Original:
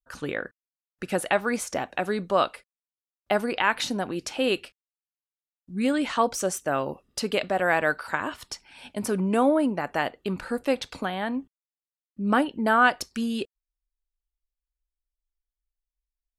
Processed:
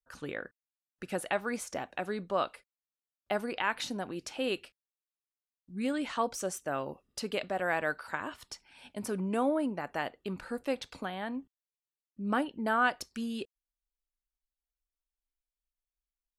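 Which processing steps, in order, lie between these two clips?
0:02.05–0:02.46: high-shelf EQ 11,000 Hz → 5,600 Hz −7 dB
level −8 dB

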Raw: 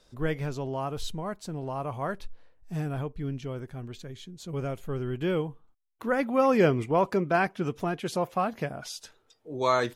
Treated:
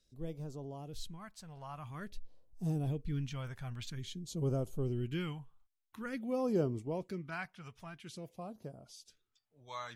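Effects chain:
source passing by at 0:03.81, 13 m/s, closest 11 metres
all-pass phaser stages 2, 0.49 Hz, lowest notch 320–2,000 Hz
level +1 dB

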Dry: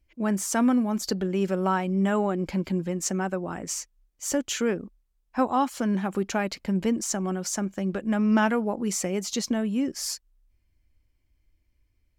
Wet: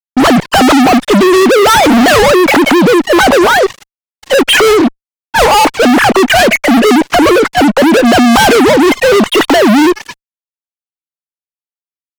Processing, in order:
three sine waves on the formant tracks
fuzz pedal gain 45 dB, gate −53 dBFS
level +8 dB

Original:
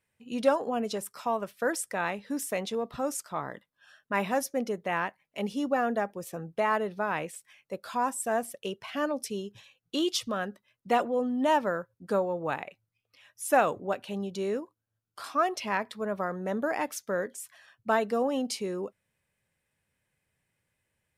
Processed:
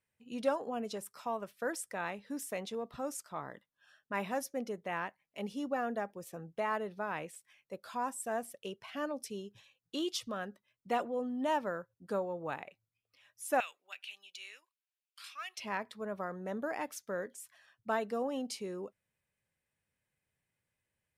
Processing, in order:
0:13.60–0:15.58: high-pass with resonance 2,500 Hz, resonance Q 2.9
level −7.5 dB

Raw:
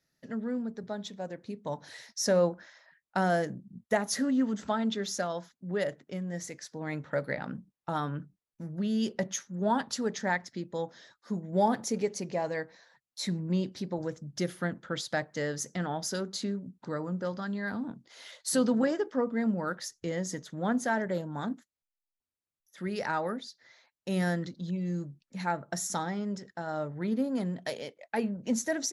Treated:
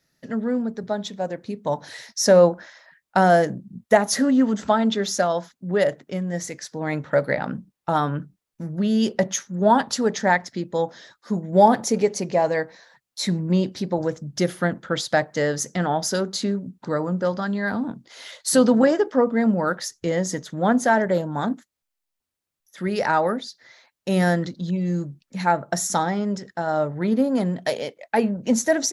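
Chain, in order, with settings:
dynamic equaliser 700 Hz, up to +4 dB, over −42 dBFS, Q 1.1
level +8.5 dB

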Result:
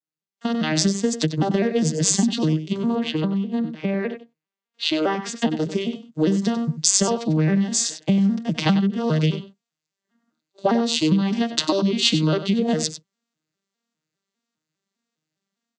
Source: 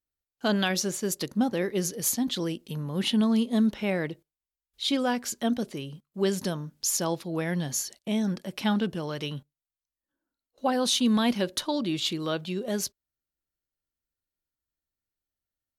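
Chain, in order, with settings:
vocoder with an arpeggio as carrier major triad, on D#3, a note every 202 ms
downward compressor 12 to 1, threshold −35 dBFS, peak gain reduction 19 dB
high-shelf EQ 2,200 Hz +11.5 dB
single-tap delay 96 ms −11.5 dB
automatic gain control gain up to 15 dB
0:02.95–0:05.42: bass and treble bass −7 dB, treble −12 dB
level +3 dB

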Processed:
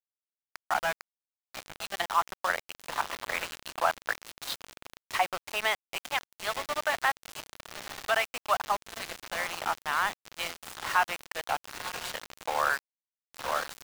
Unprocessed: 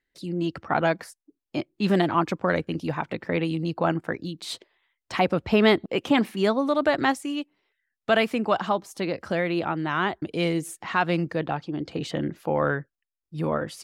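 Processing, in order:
high-pass filter 730 Hz 24 dB per octave
feedback delay with all-pass diffusion 929 ms, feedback 47%, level −7 dB
harmonic and percussive parts rebalanced percussive +3 dB
speech leveller within 4 dB 2 s
treble cut that deepens with the level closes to 2,700 Hz, closed at −21 dBFS
centre clipping without the shift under −27 dBFS
level −3 dB

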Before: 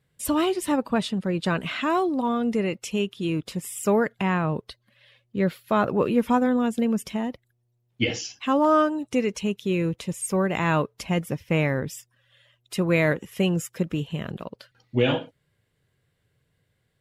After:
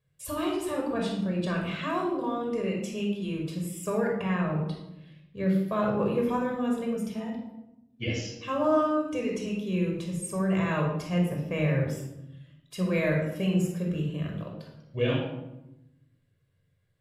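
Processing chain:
rectangular room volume 3,100 cubic metres, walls furnished, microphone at 5.6 metres
flanger 0.68 Hz, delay 9.3 ms, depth 2.5 ms, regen +79%
0:06.95–0:08.08: notch comb filter 550 Hz
level −6.5 dB

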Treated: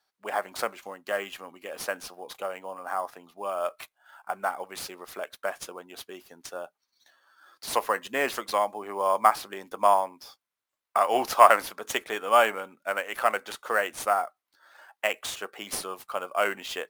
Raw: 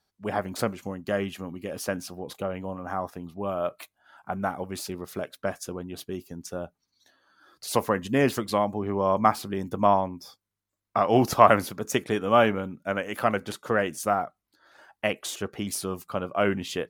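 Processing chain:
high-pass filter 700 Hz 12 dB per octave
in parallel at −5 dB: sample-rate reduction 10,000 Hz, jitter 0%
on the sum: level −1 dB

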